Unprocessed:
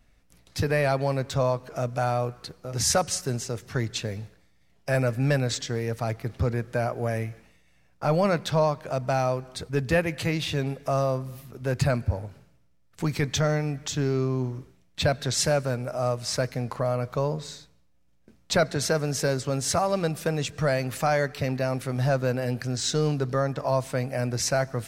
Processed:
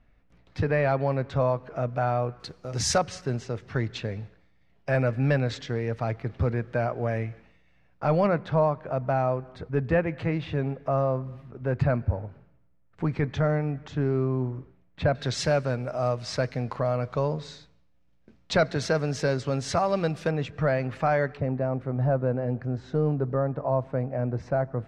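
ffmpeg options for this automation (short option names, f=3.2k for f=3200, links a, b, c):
-af "asetnsamples=n=441:p=0,asendcmd='2.4 lowpass f 6200;2.98 lowpass f 3000;8.27 lowpass f 1700;15.15 lowpass f 4200;20.31 lowpass f 2200;21.37 lowpass f 1000',lowpass=2.3k"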